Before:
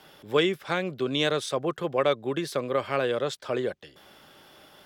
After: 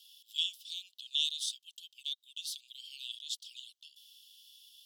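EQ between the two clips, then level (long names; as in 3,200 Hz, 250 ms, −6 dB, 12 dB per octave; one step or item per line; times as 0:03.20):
Butterworth high-pass 2,900 Hz 96 dB per octave
0.0 dB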